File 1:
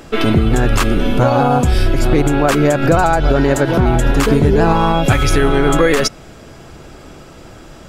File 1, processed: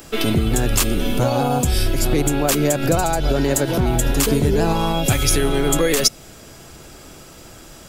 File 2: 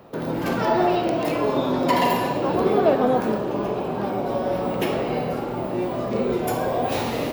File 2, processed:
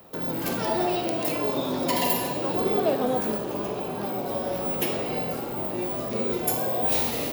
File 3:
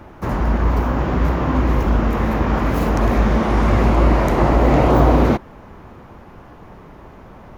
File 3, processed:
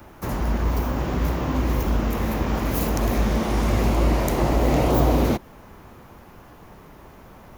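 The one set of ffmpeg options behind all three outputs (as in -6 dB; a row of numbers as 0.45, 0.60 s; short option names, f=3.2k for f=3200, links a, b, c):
-filter_complex "[0:a]aemphasis=mode=production:type=75kf,acrossover=split=220|1000|1900[a][b][c][d];[c]acompressor=threshold=-37dB:ratio=6[e];[a][b][e][d]amix=inputs=4:normalize=0,volume=-5.5dB"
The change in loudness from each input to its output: -4.5, -3.0, -5.5 LU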